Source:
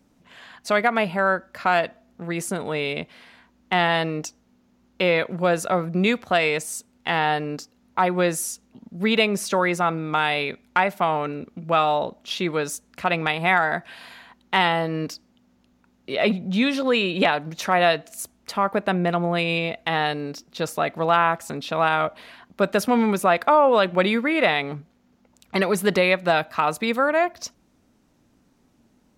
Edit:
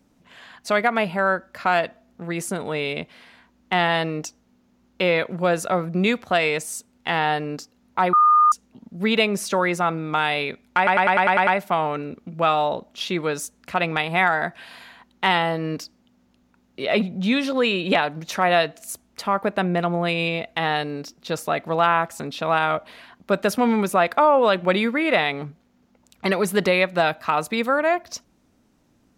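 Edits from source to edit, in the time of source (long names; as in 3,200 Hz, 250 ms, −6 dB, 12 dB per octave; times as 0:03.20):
0:08.13–0:08.52: beep over 1,220 Hz −11.5 dBFS
0:10.77: stutter 0.10 s, 8 plays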